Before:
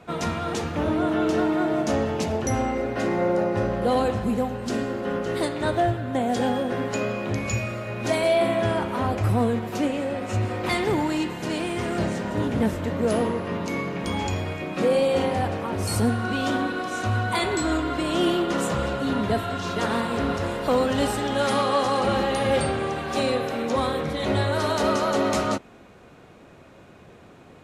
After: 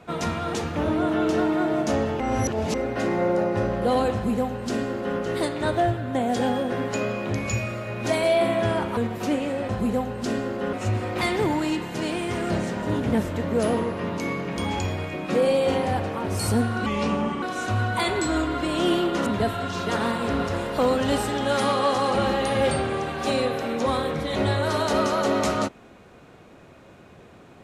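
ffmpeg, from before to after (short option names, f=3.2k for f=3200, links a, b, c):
-filter_complex "[0:a]asplit=9[a][b][c][d][e][f][g][h][i];[a]atrim=end=2.202[j];[b]atrim=start=2.198:end=2.742,asetpts=PTS-STARTPTS,areverse[k];[c]atrim=start=2.738:end=8.972[l];[d]atrim=start=9.488:end=10.212[m];[e]atrim=start=4.128:end=5.172[n];[f]atrim=start=10.208:end=16.344[o];[g]atrim=start=16.34:end=16.78,asetpts=PTS-STARTPTS,asetrate=34398,aresample=44100[p];[h]atrim=start=16.776:end=18.622[q];[i]atrim=start=19.158[r];[j][k]acrossfade=d=0.004:c1=hsin:c2=hsin[s];[s][l]acrossfade=d=0.004:c1=hsin:c2=hsin[t];[t][m]acrossfade=d=0.004:c1=hsin:c2=hsin[u];[u][n]acrossfade=d=0.004:c1=hsin:c2=hsin[v];[v][o]acrossfade=d=0.004:c1=hsin:c2=hsin[w];[w][p]acrossfade=d=0.004:c1=hsin:c2=hsin[x];[x][q]acrossfade=d=0.004:c1=hsin:c2=hsin[y];[y][r]acrossfade=d=0.004:c1=hsin:c2=hsin"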